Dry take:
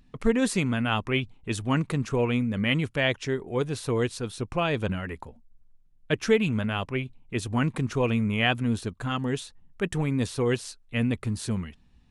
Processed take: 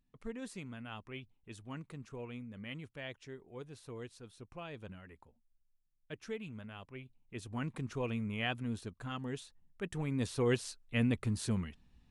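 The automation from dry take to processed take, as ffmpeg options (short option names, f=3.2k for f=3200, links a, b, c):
-af "volume=-5dB,afade=t=in:st=6.88:d=0.96:silence=0.398107,afade=t=in:st=9.91:d=0.63:silence=0.446684"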